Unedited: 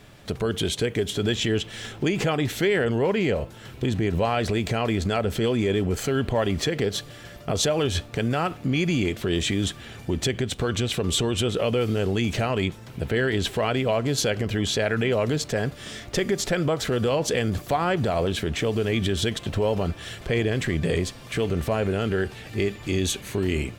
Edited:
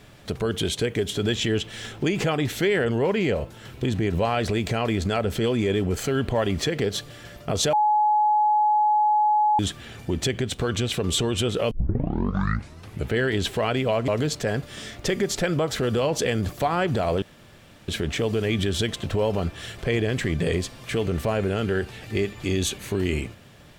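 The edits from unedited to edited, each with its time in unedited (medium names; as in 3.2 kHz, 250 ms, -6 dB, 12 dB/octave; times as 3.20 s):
7.73–9.59 s: bleep 846 Hz -16.5 dBFS
11.71 s: tape start 1.43 s
14.08–15.17 s: delete
18.31 s: insert room tone 0.66 s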